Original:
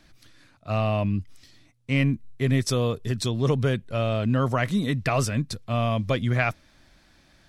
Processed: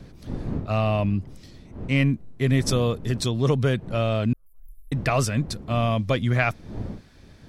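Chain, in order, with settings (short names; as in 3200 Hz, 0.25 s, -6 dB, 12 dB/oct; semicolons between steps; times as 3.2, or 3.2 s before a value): wind noise 200 Hz -38 dBFS; 4.33–4.92 inverse Chebyshev band-stop 100–5900 Hz, stop band 60 dB; gain +1.5 dB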